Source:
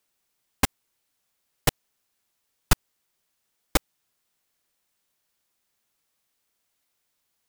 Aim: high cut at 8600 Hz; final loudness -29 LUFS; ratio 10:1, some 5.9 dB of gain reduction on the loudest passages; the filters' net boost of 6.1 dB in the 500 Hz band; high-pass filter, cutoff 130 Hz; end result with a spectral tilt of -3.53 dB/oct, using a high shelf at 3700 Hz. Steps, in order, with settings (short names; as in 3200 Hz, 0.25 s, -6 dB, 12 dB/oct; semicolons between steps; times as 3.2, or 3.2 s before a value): HPF 130 Hz; LPF 8600 Hz; bell 500 Hz +7 dB; high shelf 3700 Hz +6 dB; compressor 10:1, threshold -21 dBFS; gain +2.5 dB